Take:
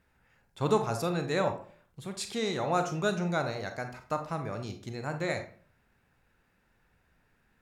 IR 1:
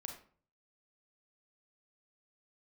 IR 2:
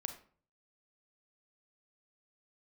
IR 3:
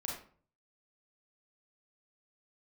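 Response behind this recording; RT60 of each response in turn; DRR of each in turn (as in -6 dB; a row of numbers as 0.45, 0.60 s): 2; 0.45, 0.45, 0.45 s; 2.5, 6.5, -2.5 dB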